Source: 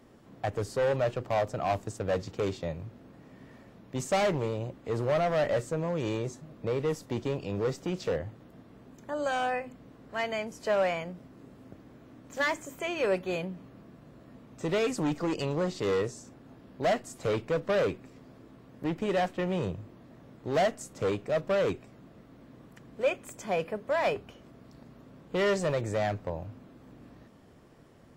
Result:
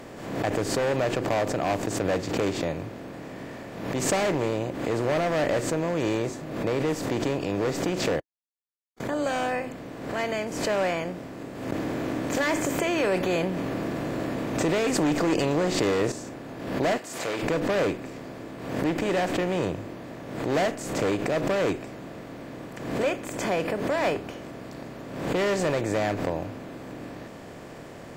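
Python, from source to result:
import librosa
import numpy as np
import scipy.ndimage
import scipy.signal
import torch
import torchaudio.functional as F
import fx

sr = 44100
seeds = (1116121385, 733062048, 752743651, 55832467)

y = fx.env_flatten(x, sr, amount_pct=50, at=(11.72, 16.12))
y = fx.highpass(y, sr, hz=1200.0, slope=6, at=(16.97, 17.42), fade=0.02)
y = fx.edit(y, sr, fx.silence(start_s=8.2, length_s=0.8), tone=tone)
y = fx.bin_compress(y, sr, power=0.6)
y = fx.dynamic_eq(y, sr, hz=310.0, q=2.9, threshold_db=-43.0, ratio=4.0, max_db=5)
y = fx.pre_swell(y, sr, db_per_s=57.0)
y = y * librosa.db_to_amplitude(-2.0)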